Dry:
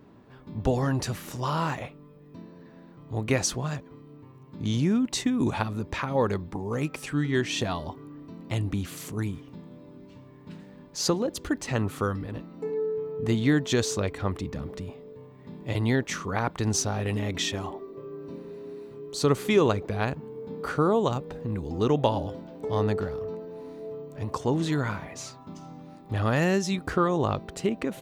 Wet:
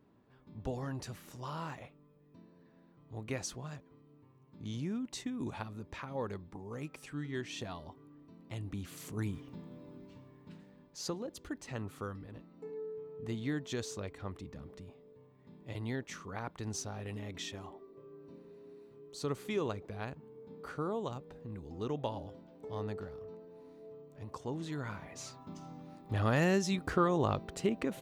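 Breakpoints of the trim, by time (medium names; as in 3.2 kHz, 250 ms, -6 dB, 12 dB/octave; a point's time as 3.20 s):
8.57 s -13.5 dB
9.44 s -4 dB
9.95 s -4 dB
11.03 s -13.5 dB
24.71 s -13.5 dB
25.37 s -5 dB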